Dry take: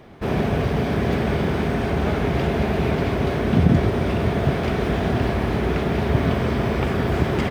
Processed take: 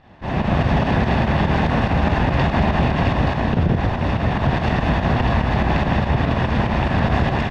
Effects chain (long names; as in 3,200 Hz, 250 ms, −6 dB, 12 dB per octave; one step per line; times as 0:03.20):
lower of the sound and its delayed copy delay 1.1 ms
automatic gain control gain up to 9 dB
low-pass filter 4,200 Hz 12 dB per octave
fake sidechain pumping 144 BPM, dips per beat 2, −8 dB, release 114 ms
brickwall limiter −9 dBFS, peak gain reduction 7.5 dB